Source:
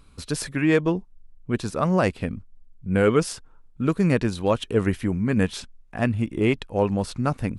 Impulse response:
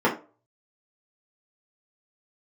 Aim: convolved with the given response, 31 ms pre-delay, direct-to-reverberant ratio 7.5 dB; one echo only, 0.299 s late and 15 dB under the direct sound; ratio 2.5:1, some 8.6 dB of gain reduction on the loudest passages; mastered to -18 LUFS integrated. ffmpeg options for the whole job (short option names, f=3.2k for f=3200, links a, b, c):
-filter_complex "[0:a]acompressor=threshold=-28dB:ratio=2.5,aecho=1:1:299:0.178,asplit=2[a][b];[1:a]atrim=start_sample=2205,adelay=31[c];[b][c]afir=irnorm=-1:irlink=0,volume=-24.5dB[d];[a][d]amix=inputs=2:normalize=0,volume=11.5dB"